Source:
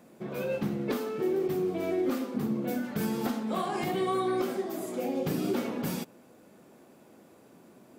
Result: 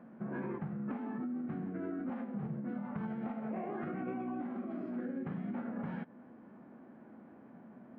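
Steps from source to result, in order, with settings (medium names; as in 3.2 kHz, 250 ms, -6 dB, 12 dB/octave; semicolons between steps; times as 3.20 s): low-pass 2.8 kHz 24 dB/octave; bass shelf 420 Hz -8.5 dB; formant shift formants -2 st; peaking EQ 230 Hz +5.5 dB 0.37 oct; formant shift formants -5 st; compression 6:1, threshold -41 dBFS, peak gain reduction 12 dB; trim +4.5 dB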